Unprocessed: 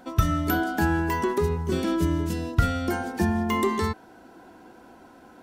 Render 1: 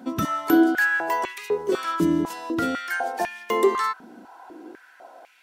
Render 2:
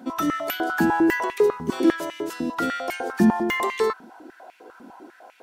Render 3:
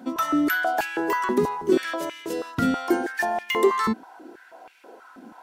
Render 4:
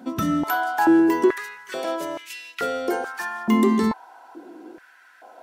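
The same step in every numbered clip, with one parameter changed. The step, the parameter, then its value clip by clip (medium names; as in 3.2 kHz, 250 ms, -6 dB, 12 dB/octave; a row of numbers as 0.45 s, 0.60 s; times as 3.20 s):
step-sequenced high-pass, rate: 4 Hz, 10 Hz, 6.2 Hz, 2.3 Hz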